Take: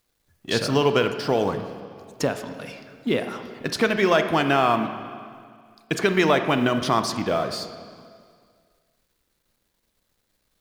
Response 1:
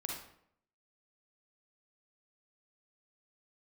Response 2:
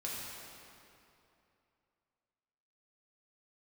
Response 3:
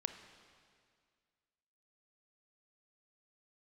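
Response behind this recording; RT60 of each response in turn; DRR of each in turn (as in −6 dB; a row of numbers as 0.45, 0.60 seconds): 3; 0.70, 2.8, 2.0 seconds; −1.0, −6.0, 8.0 decibels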